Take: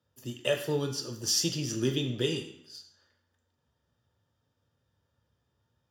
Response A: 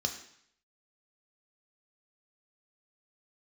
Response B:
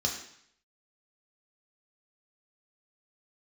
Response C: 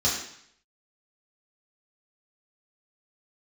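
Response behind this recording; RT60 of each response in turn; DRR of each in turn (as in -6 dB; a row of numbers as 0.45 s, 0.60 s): A; 0.65 s, 0.65 s, 0.65 s; 3.5 dB, -0.5 dB, -8.5 dB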